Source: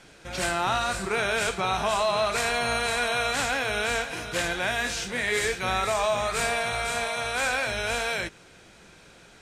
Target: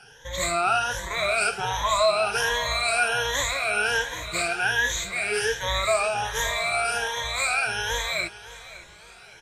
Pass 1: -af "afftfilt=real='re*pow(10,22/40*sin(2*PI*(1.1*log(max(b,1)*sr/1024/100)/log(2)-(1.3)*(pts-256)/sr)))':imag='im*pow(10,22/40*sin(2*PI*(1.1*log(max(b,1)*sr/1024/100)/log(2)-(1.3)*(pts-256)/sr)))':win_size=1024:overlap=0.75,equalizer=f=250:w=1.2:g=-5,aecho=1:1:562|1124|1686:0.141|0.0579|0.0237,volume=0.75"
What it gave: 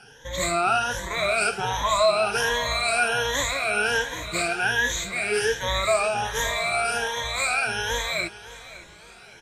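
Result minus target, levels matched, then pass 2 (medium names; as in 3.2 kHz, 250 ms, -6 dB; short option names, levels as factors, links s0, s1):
250 Hz band +5.0 dB
-af "afftfilt=real='re*pow(10,22/40*sin(2*PI*(1.1*log(max(b,1)*sr/1024/100)/log(2)-(1.3)*(pts-256)/sr)))':imag='im*pow(10,22/40*sin(2*PI*(1.1*log(max(b,1)*sr/1024/100)/log(2)-(1.3)*(pts-256)/sr)))':win_size=1024:overlap=0.75,equalizer=f=250:w=1.2:g=-13,aecho=1:1:562|1124|1686:0.141|0.0579|0.0237,volume=0.75"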